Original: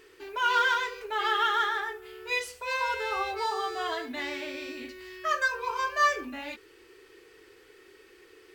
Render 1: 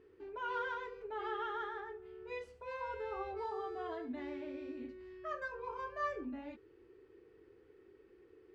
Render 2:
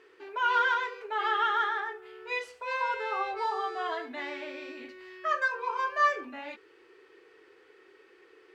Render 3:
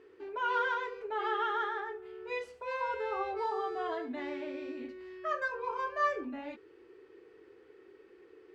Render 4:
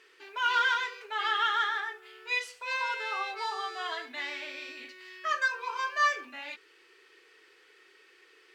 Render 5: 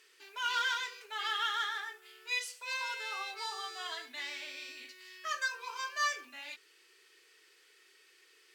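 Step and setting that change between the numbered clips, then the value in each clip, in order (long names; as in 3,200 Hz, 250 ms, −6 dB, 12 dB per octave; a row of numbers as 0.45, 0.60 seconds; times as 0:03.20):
resonant band-pass, frequency: 120, 870, 320, 2,500, 6,500 Hertz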